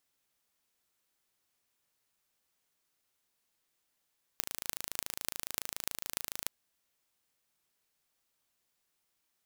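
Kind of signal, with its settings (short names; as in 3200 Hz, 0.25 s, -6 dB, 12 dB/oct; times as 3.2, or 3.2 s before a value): pulse train 27.1/s, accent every 8, -4 dBFS 2.08 s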